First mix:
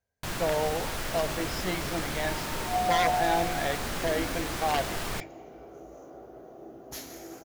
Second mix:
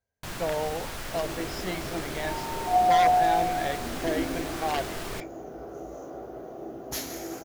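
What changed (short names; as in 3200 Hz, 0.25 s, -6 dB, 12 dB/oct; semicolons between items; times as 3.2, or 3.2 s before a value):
speech: send -10.0 dB; first sound -3.0 dB; second sound +7.0 dB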